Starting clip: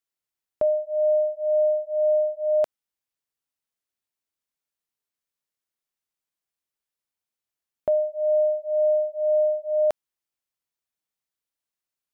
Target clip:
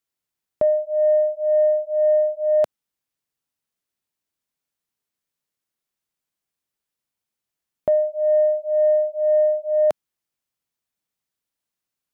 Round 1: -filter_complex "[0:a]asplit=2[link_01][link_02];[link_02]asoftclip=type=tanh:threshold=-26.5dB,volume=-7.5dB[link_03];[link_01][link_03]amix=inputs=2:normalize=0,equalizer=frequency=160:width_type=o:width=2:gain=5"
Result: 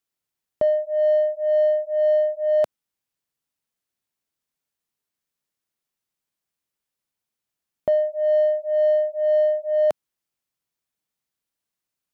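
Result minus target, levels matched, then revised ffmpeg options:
soft clipping: distortion +14 dB
-filter_complex "[0:a]asplit=2[link_01][link_02];[link_02]asoftclip=type=tanh:threshold=-15dB,volume=-7.5dB[link_03];[link_01][link_03]amix=inputs=2:normalize=0,equalizer=frequency=160:width_type=o:width=2:gain=5"

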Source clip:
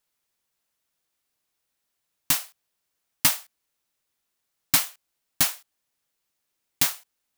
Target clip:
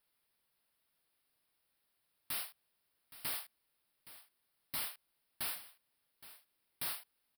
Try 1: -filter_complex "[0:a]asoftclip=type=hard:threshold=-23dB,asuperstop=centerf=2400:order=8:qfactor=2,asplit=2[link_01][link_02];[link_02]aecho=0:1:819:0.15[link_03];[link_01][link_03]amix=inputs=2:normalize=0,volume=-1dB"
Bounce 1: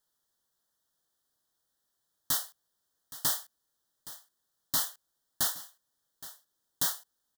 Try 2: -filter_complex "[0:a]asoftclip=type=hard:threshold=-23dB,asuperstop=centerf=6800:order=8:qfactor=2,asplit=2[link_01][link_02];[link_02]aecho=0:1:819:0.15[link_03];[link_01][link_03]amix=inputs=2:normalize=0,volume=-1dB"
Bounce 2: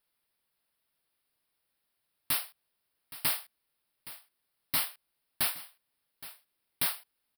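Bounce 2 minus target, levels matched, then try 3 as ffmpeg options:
hard clipping: distortion −5 dB
-filter_complex "[0:a]asoftclip=type=hard:threshold=-35dB,asuperstop=centerf=6800:order=8:qfactor=2,asplit=2[link_01][link_02];[link_02]aecho=0:1:819:0.15[link_03];[link_01][link_03]amix=inputs=2:normalize=0,volume=-1dB"

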